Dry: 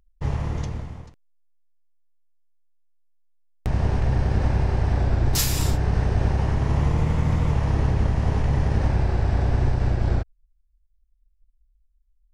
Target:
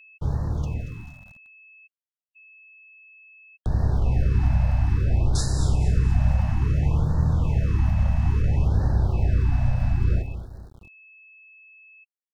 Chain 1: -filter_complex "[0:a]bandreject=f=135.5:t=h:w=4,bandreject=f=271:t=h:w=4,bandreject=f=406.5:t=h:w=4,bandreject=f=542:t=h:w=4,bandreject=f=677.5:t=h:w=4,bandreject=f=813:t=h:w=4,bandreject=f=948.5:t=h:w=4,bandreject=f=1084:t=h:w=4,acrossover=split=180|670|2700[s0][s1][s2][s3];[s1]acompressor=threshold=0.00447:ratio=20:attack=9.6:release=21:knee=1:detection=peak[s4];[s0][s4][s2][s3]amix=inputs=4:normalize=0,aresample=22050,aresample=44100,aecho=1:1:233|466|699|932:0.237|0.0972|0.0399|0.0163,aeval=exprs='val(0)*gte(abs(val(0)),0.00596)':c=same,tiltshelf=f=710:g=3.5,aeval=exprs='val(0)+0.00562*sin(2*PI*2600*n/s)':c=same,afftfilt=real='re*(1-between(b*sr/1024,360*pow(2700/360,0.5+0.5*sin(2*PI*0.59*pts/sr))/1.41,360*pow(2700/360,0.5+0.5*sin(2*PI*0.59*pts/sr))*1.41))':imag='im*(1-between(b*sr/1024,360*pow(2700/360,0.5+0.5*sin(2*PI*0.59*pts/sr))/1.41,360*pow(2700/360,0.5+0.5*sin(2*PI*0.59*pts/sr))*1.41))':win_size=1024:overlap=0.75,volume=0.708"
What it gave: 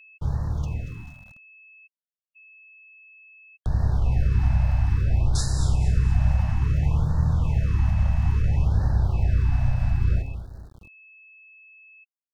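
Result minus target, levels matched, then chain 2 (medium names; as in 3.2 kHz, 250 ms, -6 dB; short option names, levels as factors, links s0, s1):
compression: peak gain reduction +8.5 dB
-filter_complex "[0:a]bandreject=f=135.5:t=h:w=4,bandreject=f=271:t=h:w=4,bandreject=f=406.5:t=h:w=4,bandreject=f=542:t=h:w=4,bandreject=f=677.5:t=h:w=4,bandreject=f=813:t=h:w=4,bandreject=f=948.5:t=h:w=4,bandreject=f=1084:t=h:w=4,acrossover=split=180|670|2700[s0][s1][s2][s3];[s1]acompressor=threshold=0.0126:ratio=20:attack=9.6:release=21:knee=1:detection=peak[s4];[s0][s4][s2][s3]amix=inputs=4:normalize=0,aresample=22050,aresample=44100,aecho=1:1:233|466|699|932:0.237|0.0972|0.0399|0.0163,aeval=exprs='val(0)*gte(abs(val(0)),0.00596)':c=same,tiltshelf=f=710:g=3.5,aeval=exprs='val(0)+0.00562*sin(2*PI*2600*n/s)':c=same,afftfilt=real='re*(1-between(b*sr/1024,360*pow(2700/360,0.5+0.5*sin(2*PI*0.59*pts/sr))/1.41,360*pow(2700/360,0.5+0.5*sin(2*PI*0.59*pts/sr))*1.41))':imag='im*(1-between(b*sr/1024,360*pow(2700/360,0.5+0.5*sin(2*PI*0.59*pts/sr))/1.41,360*pow(2700/360,0.5+0.5*sin(2*PI*0.59*pts/sr))*1.41))':win_size=1024:overlap=0.75,volume=0.708"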